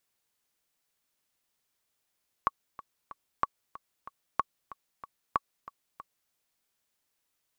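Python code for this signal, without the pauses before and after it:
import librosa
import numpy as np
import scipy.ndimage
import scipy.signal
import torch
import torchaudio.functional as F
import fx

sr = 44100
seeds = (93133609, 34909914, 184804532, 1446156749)

y = fx.click_track(sr, bpm=187, beats=3, bars=4, hz=1120.0, accent_db=18.0, level_db=-11.5)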